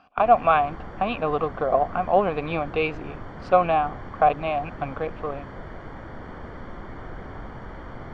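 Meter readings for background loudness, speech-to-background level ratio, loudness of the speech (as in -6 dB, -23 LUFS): -39.5 LUFS, 16.0 dB, -23.5 LUFS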